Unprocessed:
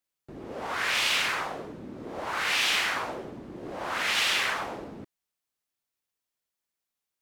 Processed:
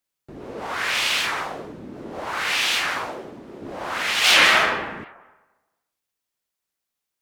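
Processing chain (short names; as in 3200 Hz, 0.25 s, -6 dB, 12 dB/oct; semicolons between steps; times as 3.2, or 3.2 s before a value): 3.08–3.63 low shelf 140 Hz -9.5 dB; 4.19–4.59 reverb throw, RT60 1.2 s, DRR -8.5 dB; record warp 78 rpm, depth 250 cents; gain +3.5 dB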